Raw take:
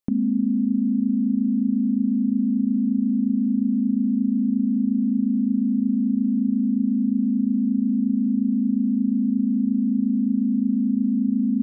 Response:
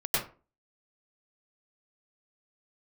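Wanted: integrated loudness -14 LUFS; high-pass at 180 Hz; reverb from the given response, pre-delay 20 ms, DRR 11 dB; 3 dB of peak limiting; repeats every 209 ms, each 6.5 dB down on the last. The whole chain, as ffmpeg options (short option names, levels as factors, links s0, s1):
-filter_complex "[0:a]highpass=180,alimiter=limit=0.133:level=0:latency=1,aecho=1:1:209|418|627|836|1045|1254:0.473|0.222|0.105|0.0491|0.0231|0.0109,asplit=2[s0][s1];[1:a]atrim=start_sample=2205,adelay=20[s2];[s1][s2]afir=irnorm=-1:irlink=0,volume=0.0944[s3];[s0][s3]amix=inputs=2:normalize=0,volume=4.22"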